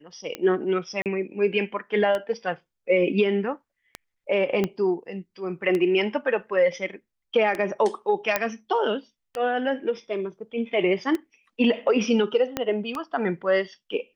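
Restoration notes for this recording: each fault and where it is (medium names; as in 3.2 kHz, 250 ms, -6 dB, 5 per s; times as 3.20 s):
tick 33 1/3 rpm -15 dBFS
1.02–1.06 s: dropout 38 ms
4.64 s: pop -12 dBFS
8.36 s: pop -6 dBFS
12.57 s: pop -10 dBFS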